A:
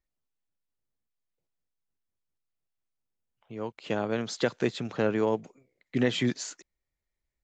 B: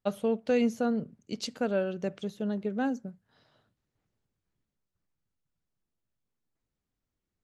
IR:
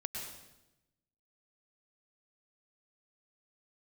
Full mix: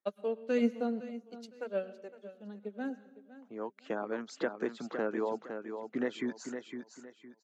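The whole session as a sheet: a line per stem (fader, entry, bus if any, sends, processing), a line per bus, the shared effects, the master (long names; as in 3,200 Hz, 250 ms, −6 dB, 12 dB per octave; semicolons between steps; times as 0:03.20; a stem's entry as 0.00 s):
−2.5 dB, 0.00 s, no send, echo send −7.5 dB, reverb reduction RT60 0.6 s; high shelf with overshoot 2,100 Hz −8.5 dB, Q 1.5; downward compressor 1.5 to 1, threshold −32 dBFS, peak gain reduction 5 dB
+1.5 dB, 0.00 s, send −13 dB, echo send −14.5 dB, flanger 0.55 Hz, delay 1.5 ms, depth 3.2 ms, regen −32%; expander for the loud parts 2.5 to 1, over −44 dBFS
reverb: on, RT60 0.95 s, pre-delay 98 ms
echo: repeating echo 510 ms, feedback 29%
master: high-pass filter 210 Hz 24 dB per octave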